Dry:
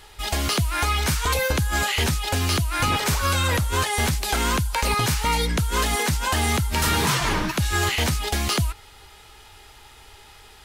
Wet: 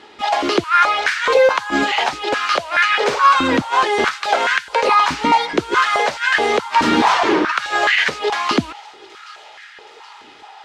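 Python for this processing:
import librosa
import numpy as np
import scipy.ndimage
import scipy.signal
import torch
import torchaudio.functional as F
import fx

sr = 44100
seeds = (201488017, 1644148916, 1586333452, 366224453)

y = fx.air_absorb(x, sr, metres=150.0)
y = fx.echo_wet_highpass(y, sr, ms=773, feedback_pct=63, hz=3100.0, wet_db=-19)
y = fx.filter_held_highpass(y, sr, hz=4.7, low_hz=270.0, high_hz=1700.0)
y = y * librosa.db_to_amplitude(6.0)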